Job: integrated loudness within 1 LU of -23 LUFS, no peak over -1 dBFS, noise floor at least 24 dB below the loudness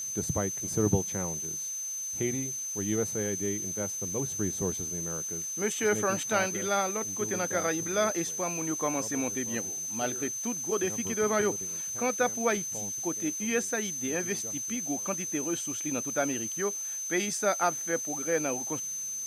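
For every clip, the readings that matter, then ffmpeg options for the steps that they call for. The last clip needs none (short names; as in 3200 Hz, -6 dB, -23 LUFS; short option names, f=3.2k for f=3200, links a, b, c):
steady tone 6200 Hz; tone level -33 dBFS; noise floor -36 dBFS; noise floor target -54 dBFS; loudness -29.5 LUFS; peak -11.0 dBFS; loudness target -23.0 LUFS
-> -af "bandreject=f=6.2k:w=30"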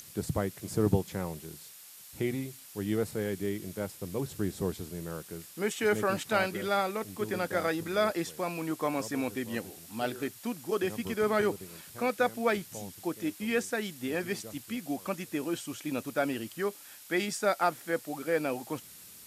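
steady tone none; noise floor -51 dBFS; noise floor target -57 dBFS
-> -af "afftdn=nr=6:nf=-51"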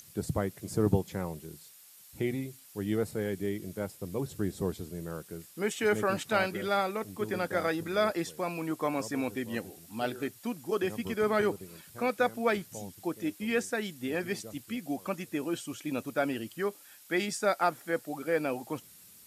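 noise floor -55 dBFS; noise floor target -57 dBFS
-> -af "afftdn=nr=6:nf=-55"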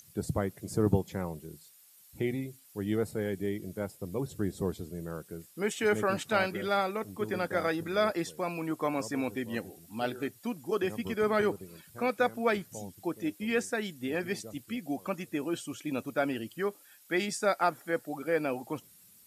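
noise floor -59 dBFS; loudness -32.5 LUFS; peak -11.5 dBFS; loudness target -23.0 LUFS
-> -af "volume=9.5dB"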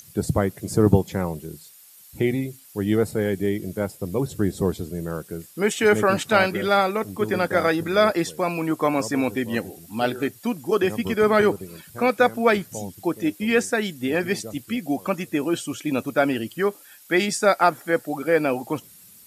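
loudness -23.0 LUFS; peak -2.0 dBFS; noise floor -49 dBFS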